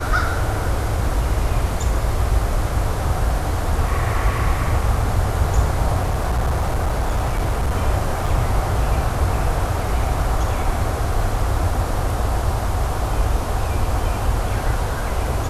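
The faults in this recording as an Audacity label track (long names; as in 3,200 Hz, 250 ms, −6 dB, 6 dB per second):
6.030000	7.720000	clipping −15.5 dBFS
8.260000	8.260000	drop-out 4.3 ms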